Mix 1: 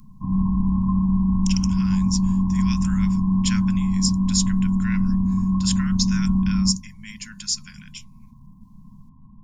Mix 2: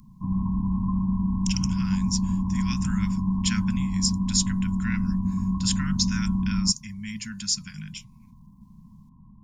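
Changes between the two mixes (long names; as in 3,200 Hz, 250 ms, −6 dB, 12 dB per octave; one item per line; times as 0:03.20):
speech: add bass and treble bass +13 dB, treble −1 dB
reverb: off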